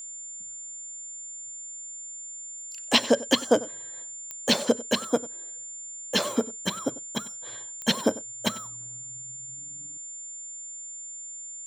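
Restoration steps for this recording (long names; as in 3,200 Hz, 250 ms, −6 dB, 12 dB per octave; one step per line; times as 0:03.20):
click removal
notch filter 7,200 Hz, Q 30
echo removal 95 ms −18.5 dB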